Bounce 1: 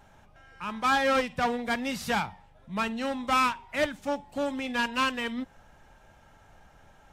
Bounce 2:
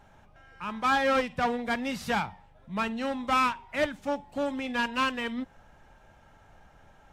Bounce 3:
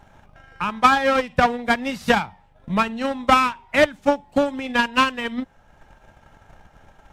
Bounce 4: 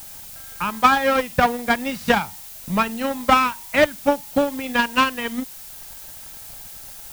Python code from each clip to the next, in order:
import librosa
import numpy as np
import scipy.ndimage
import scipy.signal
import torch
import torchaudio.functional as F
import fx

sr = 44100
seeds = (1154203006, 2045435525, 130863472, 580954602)

y1 = fx.high_shelf(x, sr, hz=4400.0, db=-5.5)
y2 = fx.transient(y1, sr, attack_db=11, sustain_db=-4)
y2 = F.gain(torch.from_numpy(y2), 4.5).numpy()
y3 = fx.dmg_noise_colour(y2, sr, seeds[0], colour='blue', level_db=-39.0)